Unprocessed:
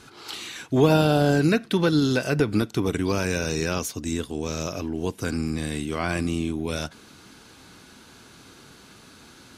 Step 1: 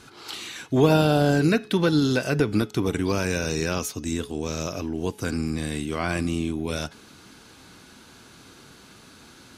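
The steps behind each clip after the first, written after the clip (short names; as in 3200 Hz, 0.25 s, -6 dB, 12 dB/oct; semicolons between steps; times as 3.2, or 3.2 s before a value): de-hum 423.8 Hz, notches 16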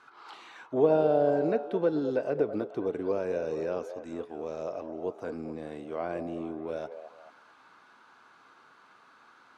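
auto-wah 540–1200 Hz, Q 2.1, down, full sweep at -22.5 dBFS; delay with a stepping band-pass 0.216 s, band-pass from 580 Hz, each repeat 0.7 oct, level -8 dB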